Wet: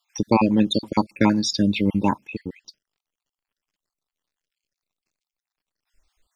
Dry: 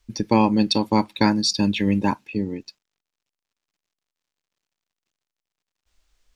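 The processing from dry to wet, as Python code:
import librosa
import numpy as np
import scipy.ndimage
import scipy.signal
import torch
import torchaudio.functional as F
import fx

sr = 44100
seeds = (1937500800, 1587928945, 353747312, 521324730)

y = fx.spec_dropout(x, sr, seeds[0], share_pct=48)
y = y * 10.0 ** (1.0 / 20.0)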